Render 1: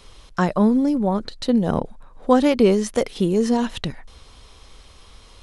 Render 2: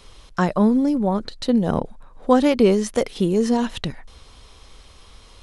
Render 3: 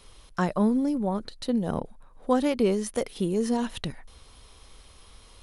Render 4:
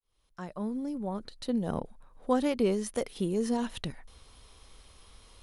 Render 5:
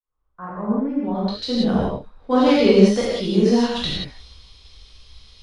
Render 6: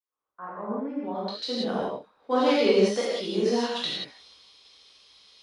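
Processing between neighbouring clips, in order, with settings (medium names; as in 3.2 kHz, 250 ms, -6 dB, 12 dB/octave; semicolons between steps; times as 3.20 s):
no audible change
peaking EQ 9.9 kHz +11.5 dB 0.21 oct; gain riding within 3 dB 2 s; trim -7.5 dB
fade-in on the opening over 1.63 s; trim -3.5 dB
low-pass sweep 1.2 kHz -> 4.5 kHz, 0.55–1.23 s; gated-style reverb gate 210 ms flat, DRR -7.5 dB; three bands expanded up and down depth 40%; trim +3.5 dB
high-pass 340 Hz 12 dB/octave; trim -4 dB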